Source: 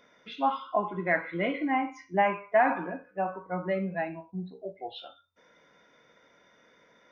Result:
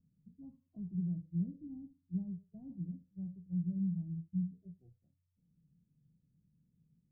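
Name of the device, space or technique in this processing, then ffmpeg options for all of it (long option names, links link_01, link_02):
the neighbour's flat through the wall: -af "lowpass=frequency=150:width=0.5412,lowpass=frequency=150:width=1.3066,equalizer=frequency=160:width_type=o:width=0.5:gain=7.5,volume=4.5dB"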